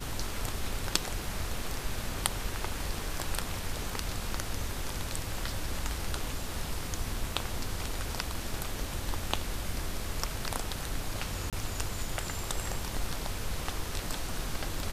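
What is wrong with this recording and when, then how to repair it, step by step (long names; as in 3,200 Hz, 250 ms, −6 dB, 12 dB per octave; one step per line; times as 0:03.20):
0:11.50–0:11.53: drop-out 27 ms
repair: repair the gap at 0:11.50, 27 ms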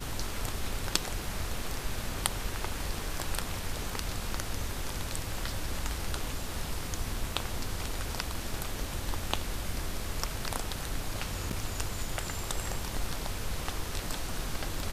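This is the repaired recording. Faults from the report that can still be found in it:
none of them is left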